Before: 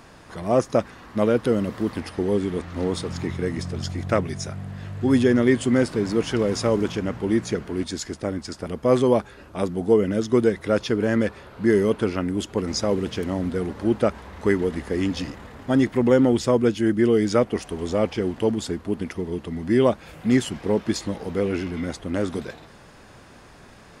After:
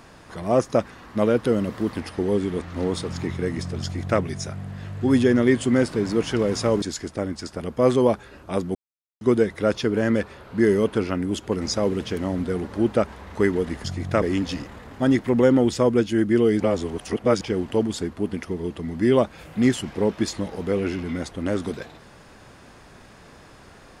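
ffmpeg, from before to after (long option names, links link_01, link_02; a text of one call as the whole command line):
ffmpeg -i in.wav -filter_complex "[0:a]asplit=8[link_01][link_02][link_03][link_04][link_05][link_06][link_07][link_08];[link_01]atrim=end=6.822[link_09];[link_02]atrim=start=7.878:end=9.81,asetpts=PTS-STARTPTS,afade=type=out:start_time=1.928:duration=0.004:curve=hsin[link_10];[link_03]atrim=start=9.81:end=10.27,asetpts=PTS-STARTPTS,volume=0[link_11];[link_04]atrim=start=10.27:end=14.902,asetpts=PTS-STARTPTS,afade=type=in:duration=0.004:curve=hsin[link_12];[link_05]atrim=start=3.818:end=4.202[link_13];[link_06]atrim=start=14.898:end=17.282[link_14];[link_07]atrim=start=17.278:end=18.092,asetpts=PTS-STARTPTS,areverse[link_15];[link_08]atrim=start=18.088[link_16];[link_10][link_11][link_12]concat=n=3:v=0:a=1[link_17];[link_09][link_17]acrossfade=duration=0.004:curve1=hsin:curve2=hsin[link_18];[link_18][link_13]acrossfade=duration=0.004:curve1=hsin:curve2=hsin[link_19];[link_19][link_14]acrossfade=duration=0.004:curve1=hsin:curve2=hsin[link_20];[link_20][link_15]acrossfade=duration=0.004:curve1=hsin:curve2=hsin[link_21];[link_21][link_16]acrossfade=duration=0.004:curve1=hsin:curve2=hsin" out.wav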